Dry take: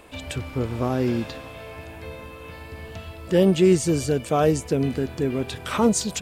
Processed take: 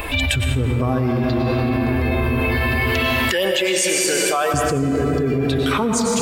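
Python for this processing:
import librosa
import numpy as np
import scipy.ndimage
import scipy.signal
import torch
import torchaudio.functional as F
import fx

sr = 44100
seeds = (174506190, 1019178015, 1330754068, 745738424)

y = fx.bin_expand(x, sr, power=1.5)
y = fx.highpass(y, sr, hz=1100.0, slope=12, at=(2.26, 4.54))
y = fx.rev_plate(y, sr, seeds[0], rt60_s=3.4, hf_ratio=0.45, predelay_ms=85, drr_db=0.5)
y = fx.env_flatten(y, sr, amount_pct=100)
y = y * librosa.db_to_amplitude(-3.0)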